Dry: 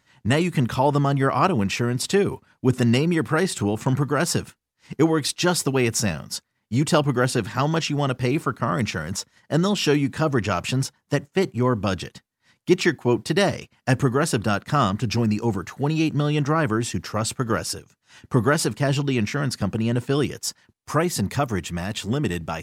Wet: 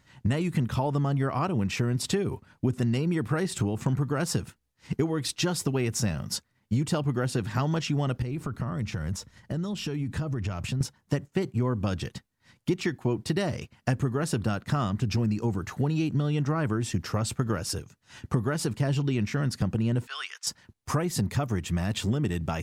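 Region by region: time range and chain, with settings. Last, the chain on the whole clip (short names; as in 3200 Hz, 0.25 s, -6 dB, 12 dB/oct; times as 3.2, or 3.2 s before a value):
8.22–10.81 low shelf 130 Hz +10.5 dB + compressor, threshold -33 dBFS
20.07–20.47 HPF 1200 Hz 24 dB/oct + air absorption 75 m
whole clip: low shelf 130 Hz +8 dB; compressor 6:1, threshold -26 dBFS; low shelf 440 Hz +3 dB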